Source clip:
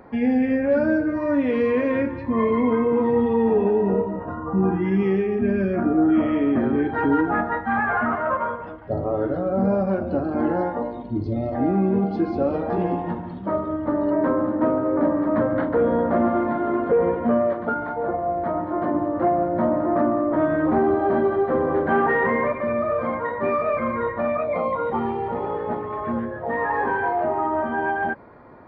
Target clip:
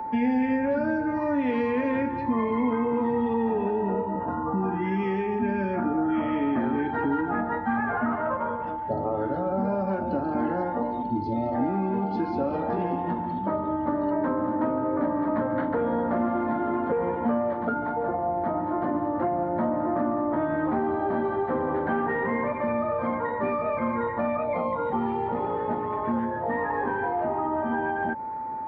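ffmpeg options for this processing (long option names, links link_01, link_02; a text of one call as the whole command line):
ffmpeg -i in.wav -filter_complex "[0:a]aeval=exprs='val(0)+0.0316*sin(2*PI*880*n/s)':channel_layout=same,acrossover=split=84|170|690[link_01][link_02][link_03][link_04];[link_01]acompressor=threshold=-54dB:ratio=4[link_05];[link_02]acompressor=threshold=-40dB:ratio=4[link_06];[link_03]acompressor=threshold=-30dB:ratio=4[link_07];[link_04]acompressor=threshold=-30dB:ratio=4[link_08];[link_05][link_06][link_07][link_08]amix=inputs=4:normalize=0,equalizer=frequency=250:width=2.9:gain=4.5" out.wav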